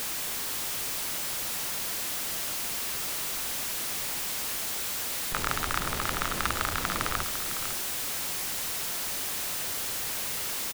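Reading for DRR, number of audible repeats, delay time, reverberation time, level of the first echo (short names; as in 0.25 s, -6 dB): none, 1, 0.503 s, none, -10.0 dB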